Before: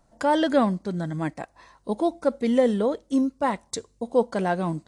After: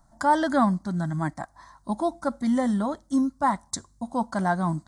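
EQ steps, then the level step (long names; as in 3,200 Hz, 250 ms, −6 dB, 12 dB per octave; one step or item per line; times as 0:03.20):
phaser with its sweep stopped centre 1,100 Hz, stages 4
+4.0 dB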